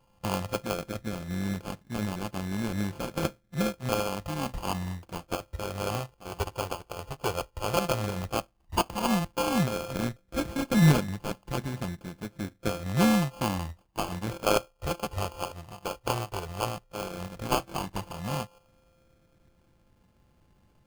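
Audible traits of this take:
a buzz of ramps at a fixed pitch in blocks of 32 samples
phaser sweep stages 8, 0.11 Hz, lowest notch 220–1,100 Hz
aliases and images of a low sample rate 1,900 Hz, jitter 0%

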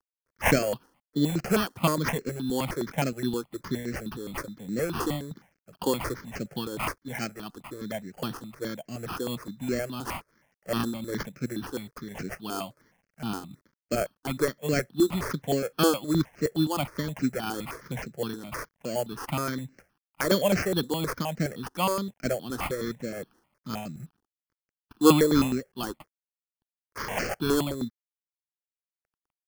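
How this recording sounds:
a quantiser's noise floor 12 bits, dither none
tremolo triangle 2.8 Hz, depth 55%
aliases and images of a low sample rate 3,800 Hz, jitter 0%
notches that jump at a steady rate 9.6 Hz 610–3,400 Hz

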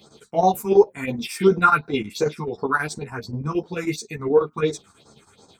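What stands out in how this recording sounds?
phaser sweep stages 4, 2.8 Hz, lowest notch 490–3,000 Hz
chopped level 9.3 Hz, depth 60%, duty 70%
a shimmering, thickened sound

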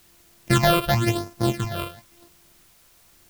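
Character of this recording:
a buzz of ramps at a fixed pitch in blocks of 128 samples
phaser sweep stages 8, 0.95 Hz, lowest notch 240–3,300 Hz
a quantiser's noise floor 10 bits, dither triangular

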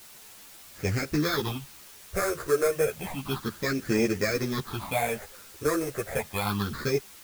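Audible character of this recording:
aliases and images of a low sample rate 2,900 Hz, jitter 0%
phaser sweep stages 6, 0.31 Hz, lowest notch 210–1,000 Hz
a quantiser's noise floor 8 bits, dither triangular
a shimmering, thickened sound

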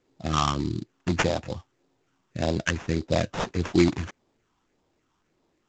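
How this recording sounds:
phaser sweep stages 6, 1.7 Hz, lowest notch 520–1,900 Hz
aliases and images of a low sample rate 4,400 Hz, jitter 20%
mu-law

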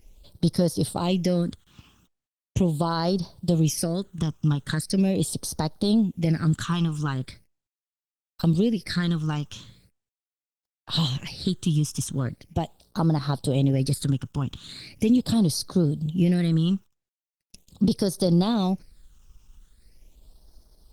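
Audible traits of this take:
a quantiser's noise floor 10 bits, dither none
phaser sweep stages 8, 0.4 Hz, lowest notch 590–2,500 Hz
Opus

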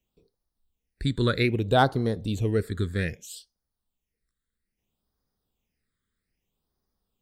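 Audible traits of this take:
phaser sweep stages 8, 0.62 Hz, lowest notch 770–2,600 Hz

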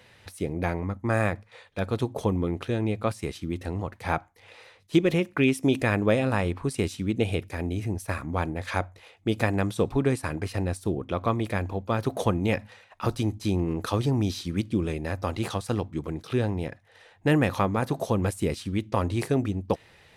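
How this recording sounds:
background noise floor −57 dBFS
spectral slope −6.0 dB per octave

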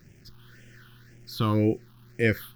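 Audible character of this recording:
a quantiser's noise floor 10 bits, dither none
phaser sweep stages 6, 1.9 Hz, lowest notch 540–1,100 Hz

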